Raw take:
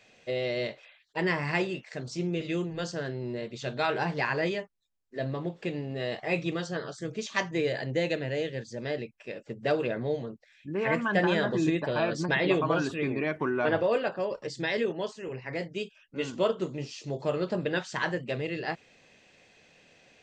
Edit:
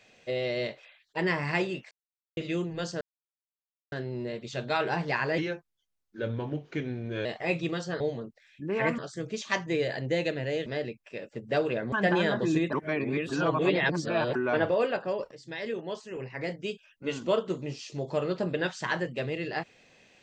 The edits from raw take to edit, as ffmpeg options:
ffmpeg -i in.wav -filter_complex "[0:a]asplit=13[link_01][link_02][link_03][link_04][link_05][link_06][link_07][link_08][link_09][link_10][link_11][link_12][link_13];[link_01]atrim=end=1.91,asetpts=PTS-STARTPTS,afade=type=out:start_time=1.906:duration=0.004:curve=hsin[link_14];[link_02]atrim=start=1.91:end=2.37,asetpts=PTS-STARTPTS,volume=0[link_15];[link_03]atrim=start=2.37:end=3.01,asetpts=PTS-STARTPTS,afade=type=in:duration=0.004:curve=hsin,afade=type=out:start_time=0.636:duration=0.004:curve=hsin,apad=pad_dur=0.91[link_16];[link_04]atrim=start=3.01:end=4.474,asetpts=PTS-STARTPTS,afade=type=in:duration=0.004:curve=hsin[link_17];[link_05]atrim=start=4.47:end=6.08,asetpts=PTS-STARTPTS,asetrate=37926,aresample=44100,atrim=end_sample=82559,asetpts=PTS-STARTPTS[link_18];[link_06]atrim=start=6.076:end=6.832[link_19];[link_07]atrim=start=10.058:end=11.042[link_20];[link_08]atrim=start=6.828:end=8.512[link_21];[link_09]atrim=start=8.798:end=10.062[link_22];[link_10]atrim=start=11.038:end=11.852[link_23];[link_11]atrim=start=11.848:end=13.472,asetpts=PTS-STARTPTS,areverse[link_24];[link_12]atrim=start=13.468:end=14.43,asetpts=PTS-STARTPTS,afade=type=out:start_time=0.958:duration=0.004:curve=hsin:silence=0.199526[link_25];[link_13]atrim=start=14.43,asetpts=PTS-STARTPTS,afade=type=in:duration=0.9:silence=0.199526[link_26];[link_14][link_15][link_16][link_17]concat=n=4:v=0:a=1[link_27];[link_27][link_18]acrossfade=duration=0.004:curve1=hsin:curve2=hsin[link_28];[link_28][link_19]acrossfade=duration=0.004:curve1=hsin:curve2=hsin[link_29];[link_29][link_20]acrossfade=duration=0.004:curve1=hsin:curve2=hsin[link_30];[link_30][link_21]acrossfade=duration=0.004:curve1=hsin:curve2=hsin[link_31];[link_31][link_22]acrossfade=duration=0.004:curve1=hsin:curve2=hsin[link_32];[link_32][link_23]acrossfade=duration=0.004:curve1=hsin:curve2=hsin[link_33];[link_33][link_24]acrossfade=duration=0.004:curve1=hsin:curve2=hsin[link_34];[link_25][link_26]concat=n=2:v=0:a=1[link_35];[link_34][link_35]acrossfade=duration=0.004:curve1=hsin:curve2=hsin" out.wav

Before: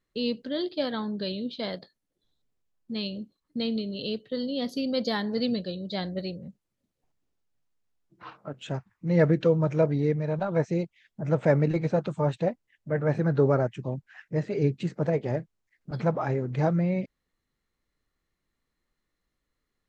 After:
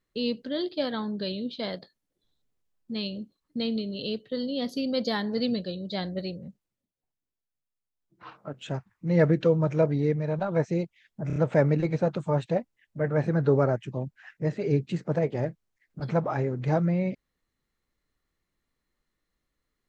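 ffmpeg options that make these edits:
ffmpeg -i in.wav -filter_complex "[0:a]asplit=6[link_01][link_02][link_03][link_04][link_05][link_06];[link_01]atrim=end=6.92,asetpts=PTS-STARTPTS,afade=type=out:start_time=6.48:duration=0.44:silence=0.237137[link_07];[link_02]atrim=start=6.92:end=7.93,asetpts=PTS-STARTPTS,volume=-12.5dB[link_08];[link_03]atrim=start=7.93:end=11.302,asetpts=PTS-STARTPTS,afade=type=in:duration=0.44:silence=0.237137[link_09];[link_04]atrim=start=11.268:end=11.302[link_10];[link_05]atrim=start=11.268:end=11.302[link_11];[link_06]atrim=start=11.268[link_12];[link_07][link_08][link_09]concat=n=3:v=0:a=1[link_13];[link_13][link_10]acrossfade=duration=0.004:curve1=hsin:curve2=hsin[link_14];[link_14][link_11]acrossfade=duration=0.004:curve1=hsin:curve2=hsin[link_15];[link_15][link_12]acrossfade=duration=0.004:curve1=hsin:curve2=hsin" out.wav

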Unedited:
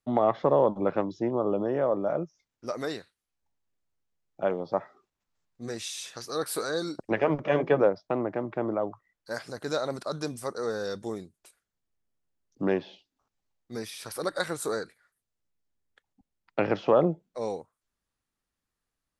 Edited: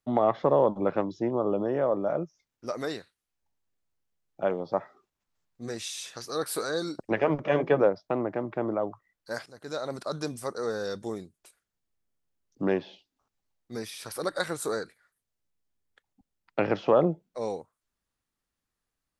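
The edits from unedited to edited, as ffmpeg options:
ffmpeg -i in.wav -filter_complex "[0:a]asplit=2[link_01][link_02];[link_01]atrim=end=9.46,asetpts=PTS-STARTPTS,afade=type=out:start_time=9.456:duration=0.004:curve=hsin:silence=0.16788[link_03];[link_02]atrim=start=9.46,asetpts=PTS-STARTPTS,afade=type=in:duration=0.6:silence=0.16788[link_04];[link_03][link_04]concat=n=2:v=0:a=1" out.wav

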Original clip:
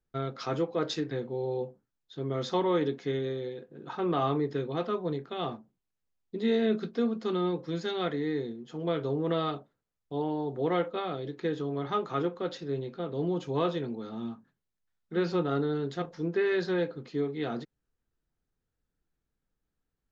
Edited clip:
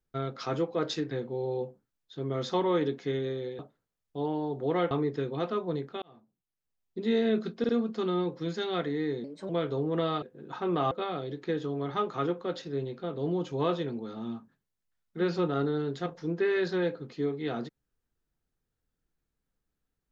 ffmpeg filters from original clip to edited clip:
ffmpeg -i in.wav -filter_complex "[0:a]asplit=10[link_01][link_02][link_03][link_04][link_05][link_06][link_07][link_08][link_09][link_10];[link_01]atrim=end=3.592[link_11];[link_02]atrim=start=9.548:end=10.872[link_12];[link_03]atrim=start=4.278:end=5.39,asetpts=PTS-STARTPTS,afade=type=out:start_time=1.108:duration=0.004:curve=hsin[link_13];[link_04]atrim=start=5.39:end=7.012,asetpts=PTS-STARTPTS,afade=type=in:duration=0.98[link_14];[link_05]atrim=start=6.958:end=7.012[link_15];[link_06]atrim=start=6.958:end=8.514[link_16];[link_07]atrim=start=8.51:end=8.82,asetpts=PTS-STARTPTS,asetrate=54243,aresample=44100[link_17];[link_08]atrim=start=8.816:end=9.552[link_18];[link_09]atrim=start=3.588:end=4.282[link_19];[link_10]atrim=start=10.868[link_20];[link_11][link_12]acrossfade=duration=0.004:curve1=hsin:curve2=hsin[link_21];[link_13][link_14]concat=n=2:v=0:a=1[link_22];[link_21][link_22]acrossfade=duration=0.004:curve1=hsin:curve2=hsin[link_23];[link_23][link_15]acrossfade=duration=0.004:curve1=hsin:curve2=hsin[link_24];[link_24][link_16]acrossfade=duration=0.004:curve1=hsin:curve2=hsin[link_25];[link_25][link_17]acrossfade=duration=0.004:curve1=hsin:curve2=hsin[link_26];[link_26][link_18]acrossfade=duration=0.004:curve1=hsin:curve2=hsin[link_27];[link_27][link_19]acrossfade=duration=0.004:curve1=hsin:curve2=hsin[link_28];[link_28][link_20]acrossfade=duration=0.004:curve1=hsin:curve2=hsin" out.wav

